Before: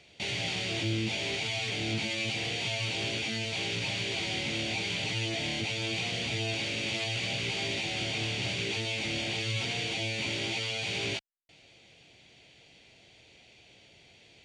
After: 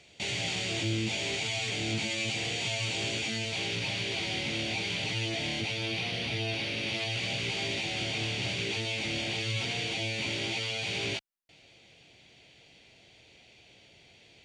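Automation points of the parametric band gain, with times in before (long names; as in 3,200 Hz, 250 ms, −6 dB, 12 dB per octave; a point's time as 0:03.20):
parametric band 7,400 Hz 0.43 octaves
0:03.21 +6.5 dB
0:03.83 −2 dB
0:05.57 −2 dB
0:06.01 −12 dB
0:06.72 −12 dB
0:07.31 −1 dB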